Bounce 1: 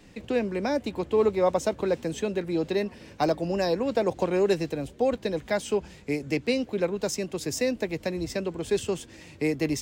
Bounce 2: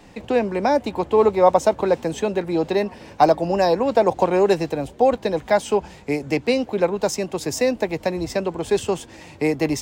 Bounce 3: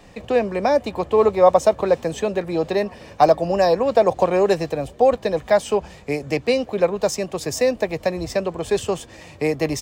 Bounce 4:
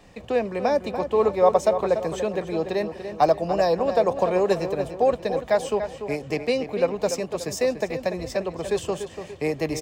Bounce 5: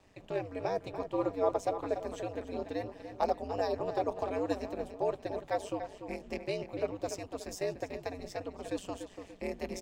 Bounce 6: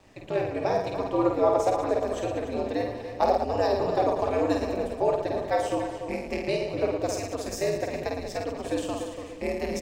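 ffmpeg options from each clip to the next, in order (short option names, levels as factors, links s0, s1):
-af "equalizer=f=840:t=o:w=1:g=9.5,volume=1.58"
-af "aecho=1:1:1.7:0.32"
-filter_complex "[0:a]asplit=2[s0][s1];[s1]adelay=290,lowpass=f=3300:p=1,volume=0.355,asplit=2[s2][s3];[s3]adelay=290,lowpass=f=3300:p=1,volume=0.45,asplit=2[s4][s5];[s5]adelay=290,lowpass=f=3300:p=1,volume=0.45,asplit=2[s6][s7];[s7]adelay=290,lowpass=f=3300:p=1,volume=0.45,asplit=2[s8][s9];[s9]adelay=290,lowpass=f=3300:p=1,volume=0.45[s10];[s0][s2][s4][s6][s8][s10]amix=inputs=6:normalize=0,volume=0.596"
-af "aeval=exprs='val(0)*sin(2*PI*96*n/s)':c=same,volume=0.355"
-af "aecho=1:1:50|112.5|190.6|288.3|410.4:0.631|0.398|0.251|0.158|0.1,volume=2.11"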